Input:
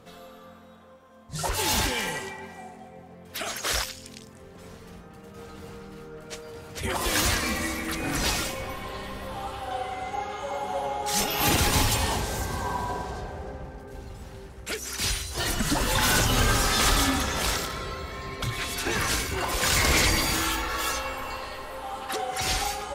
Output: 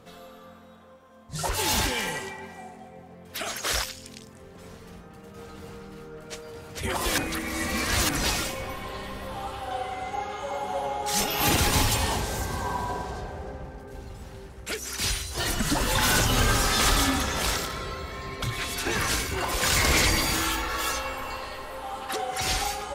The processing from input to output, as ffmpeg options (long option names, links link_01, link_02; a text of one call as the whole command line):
ffmpeg -i in.wav -filter_complex "[0:a]asplit=3[link_01][link_02][link_03];[link_01]atrim=end=7.182[link_04];[link_02]atrim=start=7.178:end=8.092,asetpts=PTS-STARTPTS,areverse[link_05];[link_03]atrim=start=8.088[link_06];[link_04][link_05]acrossfade=duration=0.004:curve1=hsin:curve2=hsin[link_07];[link_07][link_06]acrossfade=duration=0.004:curve1=hsin:curve2=hsin" out.wav